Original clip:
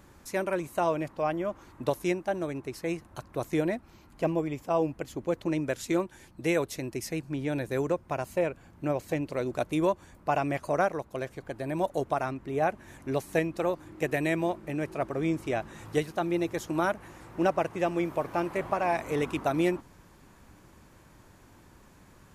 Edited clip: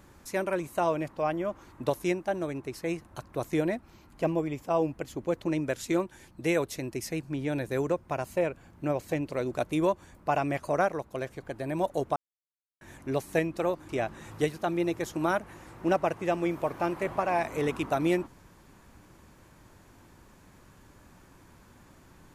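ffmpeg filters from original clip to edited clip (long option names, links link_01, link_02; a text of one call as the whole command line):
ffmpeg -i in.wav -filter_complex "[0:a]asplit=4[link_01][link_02][link_03][link_04];[link_01]atrim=end=12.16,asetpts=PTS-STARTPTS,afade=type=out:start_time=12.156:duration=0.004:curve=hsin[link_05];[link_02]atrim=start=12.16:end=12.81,asetpts=PTS-STARTPTS,volume=0[link_06];[link_03]atrim=start=12.81:end=13.892,asetpts=PTS-STARTPTS,afade=type=in:duration=0.004:curve=hsin[link_07];[link_04]atrim=start=15.428[link_08];[link_05][link_06][link_07]concat=n=3:v=0:a=1[link_09];[link_09][link_08]acrossfade=duration=0.004:curve1=hsin:curve2=hsin" out.wav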